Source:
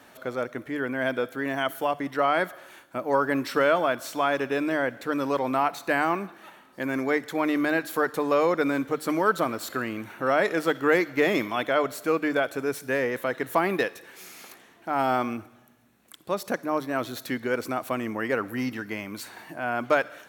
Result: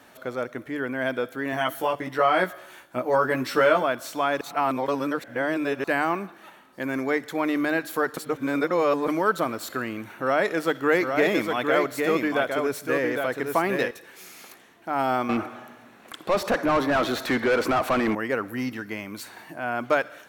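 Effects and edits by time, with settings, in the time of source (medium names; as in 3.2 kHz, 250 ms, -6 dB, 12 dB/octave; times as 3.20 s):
1.51–3.83 s: doubling 16 ms -2 dB
4.41–5.84 s: reverse
8.17–9.08 s: reverse
10.10–13.91 s: delay 808 ms -4.5 dB
15.29–18.15 s: overdrive pedal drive 27 dB, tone 1.4 kHz, clips at -12.5 dBFS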